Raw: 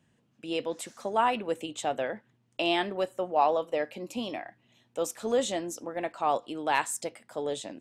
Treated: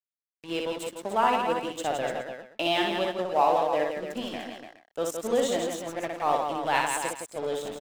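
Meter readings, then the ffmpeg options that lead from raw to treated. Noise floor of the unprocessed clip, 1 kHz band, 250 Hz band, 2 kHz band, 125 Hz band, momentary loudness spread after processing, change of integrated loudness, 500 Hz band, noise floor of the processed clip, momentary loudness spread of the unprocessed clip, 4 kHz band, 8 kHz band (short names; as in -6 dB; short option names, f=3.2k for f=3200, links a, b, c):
-70 dBFS, +3.0 dB, +1.5 dB, +3.0 dB, +3.5 dB, 11 LU, +2.5 dB, +2.5 dB, under -85 dBFS, 11 LU, +3.0 dB, +1.0 dB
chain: -af "aeval=exprs='sgn(val(0))*max(abs(val(0))-0.00708,0)':c=same,aecho=1:1:60|166|295|419:0.668|0.531|0.398|0.112,volume=1dB"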